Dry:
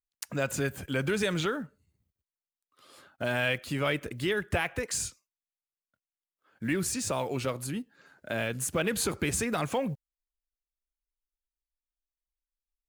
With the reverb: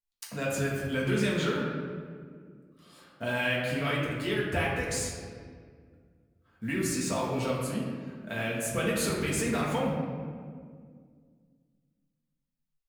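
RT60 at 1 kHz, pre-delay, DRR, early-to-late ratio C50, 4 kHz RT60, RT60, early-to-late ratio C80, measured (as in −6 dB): 1.7 s, 4 ms, −5.0 dB, 1.0 dB, 1.1 s, 2.0 s, 3.0 dB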